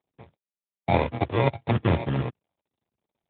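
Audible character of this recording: a buzz of ramps at a fixed pitch in blocks of 64 samples; phasing stages 12, 0.61 Hz, lowest notch 190–1000 Hz; aliases and images of a low sample rate 1500 Hz, jitter 0%; AMR-NB

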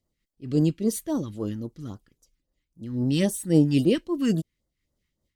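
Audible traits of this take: phasing stages 2, 3.7 Hz, lowest notch 580–2400 Hz; noise-modulated level

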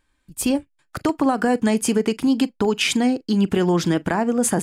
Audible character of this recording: noise floor -68 dBFS; spectral tilt -4.5 dB/oct

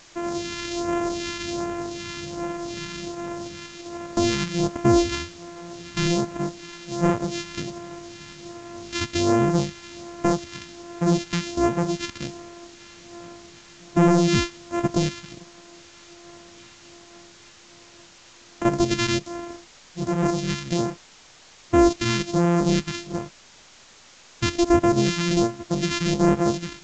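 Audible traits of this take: a buzz of ramps at a fixed pitch in blocks of 128 samples; phasing stages 2, 1.3 Hz, lowest notch 570–4100 Hz; a quantiser's noise floor 8-bit, dither triangular; µ-law

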